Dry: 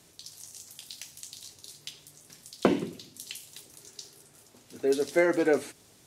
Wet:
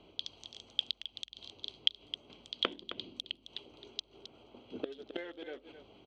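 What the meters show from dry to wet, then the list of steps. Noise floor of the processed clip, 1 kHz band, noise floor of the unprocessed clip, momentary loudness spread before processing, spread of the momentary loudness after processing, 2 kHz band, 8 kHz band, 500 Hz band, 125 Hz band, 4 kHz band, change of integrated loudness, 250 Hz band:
-67 dBFS, -11.0 dB, -59 dBFS, 21 LU, 17 LU, -12.0 dB, -19.0 dB, -17.5 dB, -18.0 dB, +8.0 dB, -11.0 dB, -17.5 dB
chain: local Wiener filter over 25 samples; inverted gate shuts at -26 dBFS, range -27 dB; saturation -25.5 dBFS, distortion -12 dB; bass shelf 110 Hz -8 dB; on a send: delay 265 ms -11.5 dB; on the sum: hum 50 Hz, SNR 25 dB; resonant low-pass 3.3 kHz, resonance Q 15; peaking EQ 140 Hz -10 dB 0.71 oct; trim +6 dB

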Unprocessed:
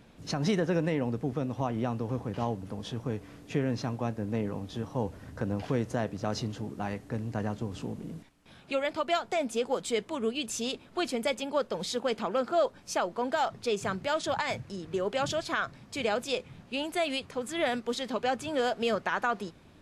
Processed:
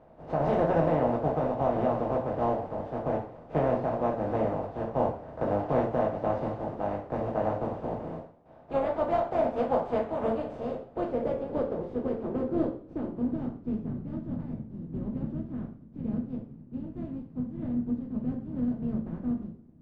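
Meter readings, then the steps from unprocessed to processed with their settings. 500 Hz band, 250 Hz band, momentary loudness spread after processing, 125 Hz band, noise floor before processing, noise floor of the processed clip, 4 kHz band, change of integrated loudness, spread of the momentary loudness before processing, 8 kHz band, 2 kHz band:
+2.0 dB, +2.5 dB, 10 LU, +0.5 dB, -55 dBFS, -51 dBFS, under -20 dB, +1.0 dB, 8 LU, under -25 dB, -10.5 dB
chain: spectral contrast reduction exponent 0.32; low-pass sweep 670 Hz -> 230 Hz, 10.20–14.01 s; two-slope reverb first 0.41 s, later 1.9 s, from -27 dB, DRR -2 dB

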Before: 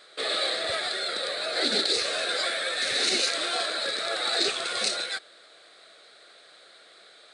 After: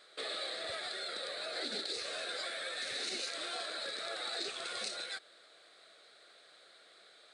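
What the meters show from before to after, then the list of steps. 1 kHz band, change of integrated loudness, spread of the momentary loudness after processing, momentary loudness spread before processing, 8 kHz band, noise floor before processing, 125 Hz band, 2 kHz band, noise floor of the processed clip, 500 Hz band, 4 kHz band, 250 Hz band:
-11.5 dB, -12.5 dB, 2 LU, 6 LU, -12.5 dB, -54 dBFS, no reading, -12.0 dB, -61 dBFS, -12.0 dB, -12.5 dB, -13.0 dB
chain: compression 2.5:1, threshold -31 dBFS, peak gain reduction 7.5 dB; trim -7.5 dB

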